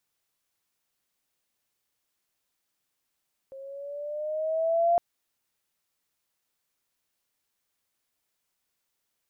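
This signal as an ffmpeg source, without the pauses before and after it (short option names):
-f lavfi -i "aevalsrc='pow(10,(-18+22*(t/1.46-1))/20)*sin(2*PI*535*1.46/(4.5*log(2)/12)*(exp(4.5*log(2)/12*t/1.46)-1))':d=1.46:s=44100"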